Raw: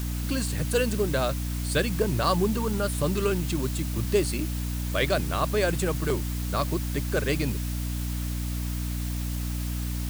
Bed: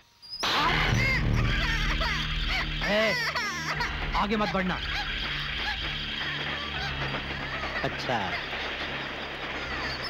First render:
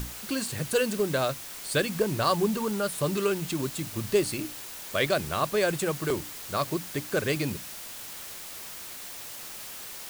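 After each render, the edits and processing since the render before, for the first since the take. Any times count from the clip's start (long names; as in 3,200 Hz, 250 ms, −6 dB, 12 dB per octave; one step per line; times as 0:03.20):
mains-hum notches 60/120/180/240/300 Hz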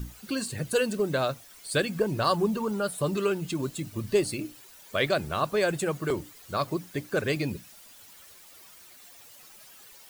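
broadband denoise 13 dB, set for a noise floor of −41 dBFS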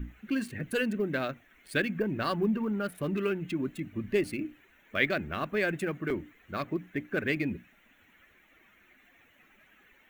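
adaptive Wiener filter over 9 samples
octave-band graphic EQ 125/250/500/1,000/2,000/4,000/8,000 Hz −8/+5/−6/−9/+8/−6/−12 dB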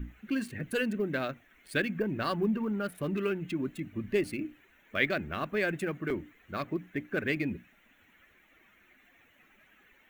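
level −1 dB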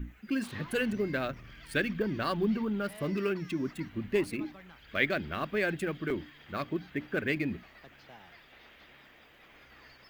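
mix in bed −24.5 dB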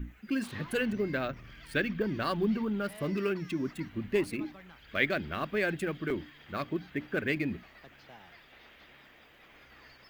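0:00.77–0:02.02: dynamic equaliser 9,500 Hz, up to −6 dB, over −56 dBFS, Q 0.76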